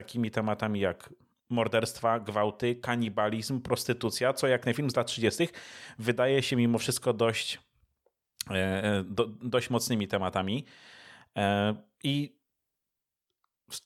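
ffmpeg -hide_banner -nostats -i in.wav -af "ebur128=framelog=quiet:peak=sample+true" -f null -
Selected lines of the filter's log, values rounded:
Integrated loudness:
  I:         -29.6 LUFS
  Threshold: -40.2 LUFS
Loudness range:
  LRA:         3.6 LU
  Threshold: -50.2 LUFS
  LRA low:   -32.2 LUFS
  LRA high:  -28.5 LUFS
Sample peak:
  Peak:      -12.3 dBFS
True peak:
  Peak:      -11.9 dBFS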